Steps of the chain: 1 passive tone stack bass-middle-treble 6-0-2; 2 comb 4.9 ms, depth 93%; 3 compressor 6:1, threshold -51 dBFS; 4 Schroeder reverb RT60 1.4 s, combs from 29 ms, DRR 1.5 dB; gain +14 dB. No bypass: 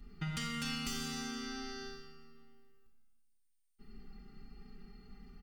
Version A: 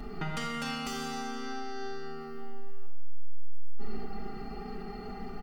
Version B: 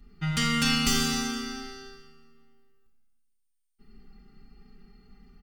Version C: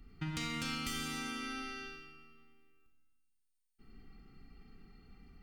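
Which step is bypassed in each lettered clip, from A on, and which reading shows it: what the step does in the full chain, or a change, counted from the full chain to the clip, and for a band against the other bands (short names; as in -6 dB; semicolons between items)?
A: 1, 500 Hz band +8.0 dB; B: 3, mean gain reduction 4.5 dB; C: 2, 2 kHz band +3.0 dB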